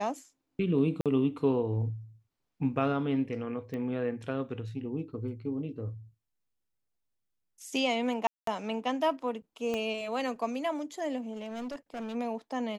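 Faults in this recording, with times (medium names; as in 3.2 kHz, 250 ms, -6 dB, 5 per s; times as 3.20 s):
1.01–1.06 s: dropout 47 ms
3.74 s: pop -27 dBFS
8.27–8.47 s: dropout 203 ms
9.74 s: pop -20 dBFS
11.32–12.16 s: clipped -34 dBFS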